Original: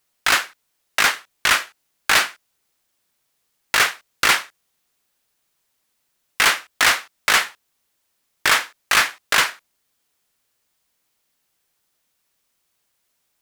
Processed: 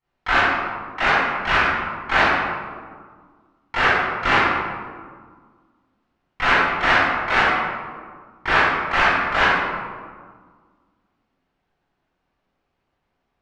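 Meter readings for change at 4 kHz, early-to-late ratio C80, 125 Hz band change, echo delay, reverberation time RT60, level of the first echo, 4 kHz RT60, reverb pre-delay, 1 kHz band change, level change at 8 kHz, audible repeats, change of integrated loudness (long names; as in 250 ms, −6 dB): −6.5 dB, −0.5 dB, +11.0 dB, no echo audible, 1.7 s, no echo audible, 0.85 s, 22 ms, +5.0 dB, below −20 dB, no echo audible, −0.5 dB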